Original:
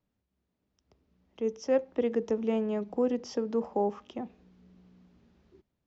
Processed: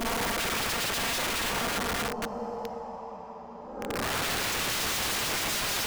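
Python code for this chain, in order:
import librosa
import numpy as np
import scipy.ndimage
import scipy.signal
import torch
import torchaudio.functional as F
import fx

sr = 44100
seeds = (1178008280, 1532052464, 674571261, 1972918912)

y = fx.tracing_dist(x, sr, depth_ms=0.21)
y = fx.paulstretch(y, sr, seeds[0], factor=18.0, window_s=0.1, from_s=3.52)
y = fx.echo_split(y, sr, split_hz=770.0, low_ms=230, high_ms=119, feedback_pct=52, wet_db=-9.0)
y = (np.mod(10.0 ** (30.5 / 20.0) * y + 1.0, 2.0) - 1.0) / 10.0 ** (30.5 / 20.0)
y = y * librosa.db_to_amplitude(5.5)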